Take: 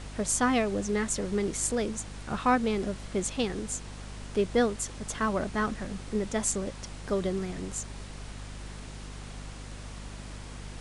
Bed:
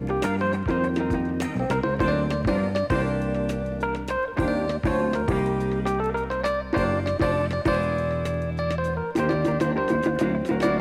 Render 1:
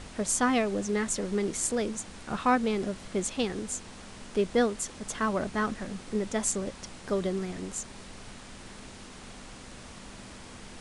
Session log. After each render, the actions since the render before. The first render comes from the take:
mains-hum notches 50/100/150 Hz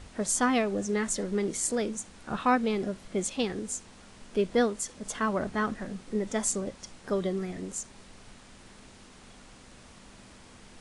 noise reduction from a noise print 6 dB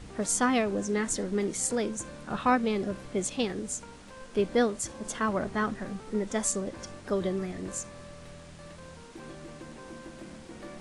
mix in bed −22.5 dB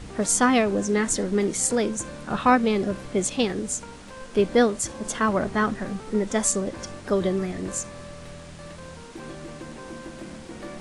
level +6 dB

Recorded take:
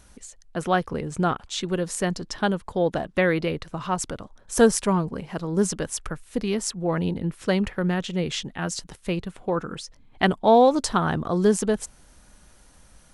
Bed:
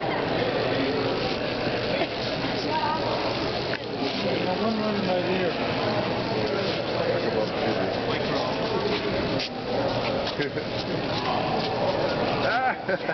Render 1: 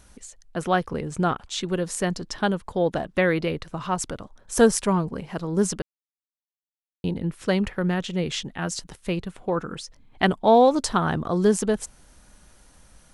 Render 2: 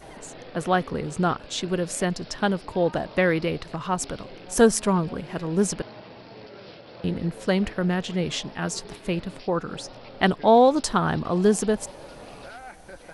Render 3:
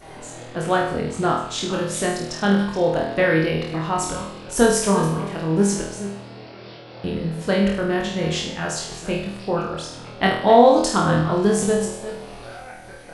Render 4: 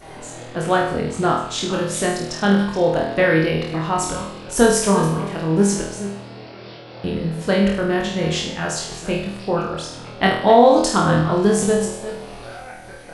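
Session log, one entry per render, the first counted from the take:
0:05.82–0:07.04: silence
mix in bed −18 dB
delay that plays each chunk backwards 253 ms, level −11.5 dB; flutter between parallel walls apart 4.3 metres, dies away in 0.62 s
level +2 dB; brickwall limiter −2 dBFS, peak gain reduction 2.5 dB

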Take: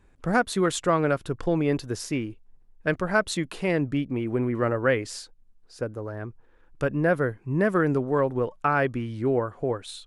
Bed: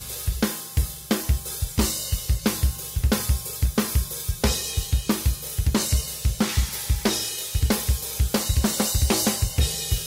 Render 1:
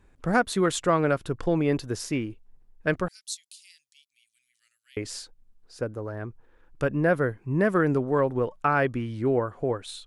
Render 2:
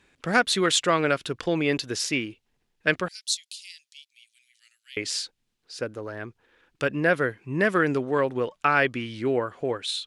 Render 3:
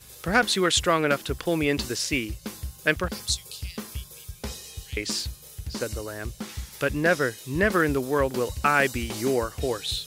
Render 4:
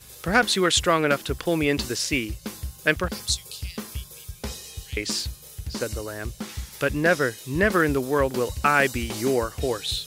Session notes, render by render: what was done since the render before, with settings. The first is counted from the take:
0:03.08–0:04.97: inverse Chebyshev high-pass filter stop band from 1,000 Hz, stop band 70 dB
meter weighting curve D
mix in bed −13 dB
level +1.5 dB

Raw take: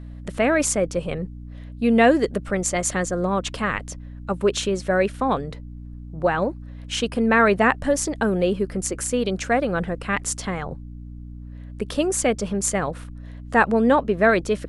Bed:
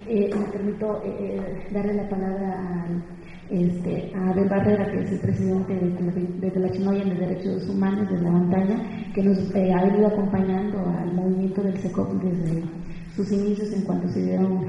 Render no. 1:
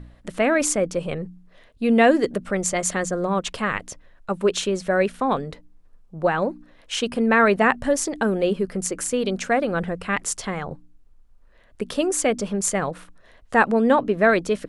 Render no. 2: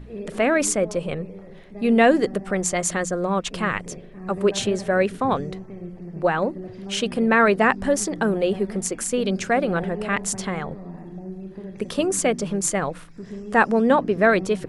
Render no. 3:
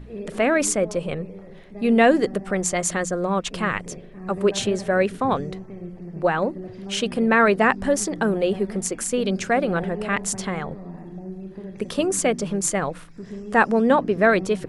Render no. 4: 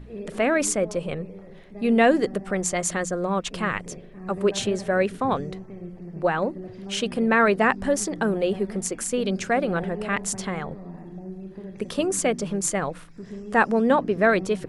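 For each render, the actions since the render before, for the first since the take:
hum removal 60 Hz, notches 5
mix in bed −12.5 dB
no processing that can be heard
level −2 dB

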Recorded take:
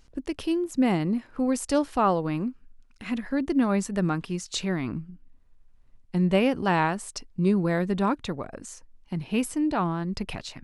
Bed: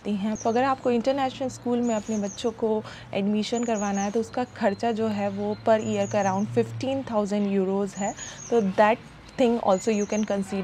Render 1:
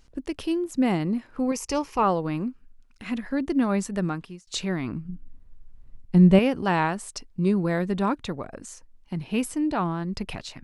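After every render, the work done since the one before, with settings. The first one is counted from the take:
0:01.51–0:02.03: EQ curve with evenly spaced ripples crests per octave 0.79, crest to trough 10 dB
0:03.81–0:04.47: fade out equal-power
0:05.05–0:06.39: low-shelf EQ 340 Hz +11 dB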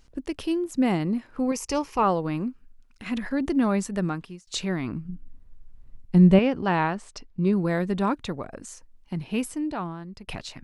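0:03.06–0:03.78: transient designer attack 0 dB, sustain +6 dB
0:06.34–0:07.53: high-frequency loss of the air 100 metres
0:09.18–0:10.28: fade out, to −15 dB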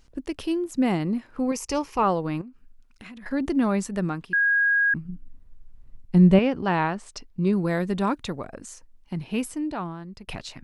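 0:02.41–0:03.26: downward compressor 12 to 1, threshold −39 dBFS
0:04.33–0:04.94: beep over 1,640 Hz −17.5 dBFS
0:07.06–0:08.51: high-shelf EQ 4,600 Hz +4.5 dB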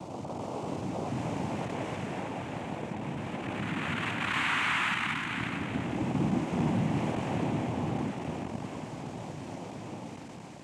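spectrum smeared in time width 1,470 ms
cochlear-implant simulation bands 4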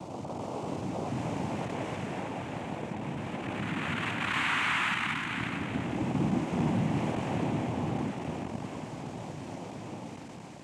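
no processing that can be heard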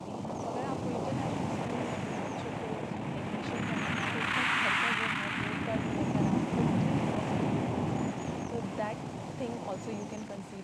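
mix in bed −17 dB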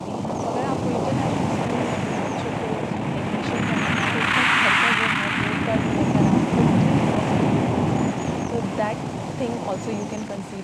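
level +10.5 dB

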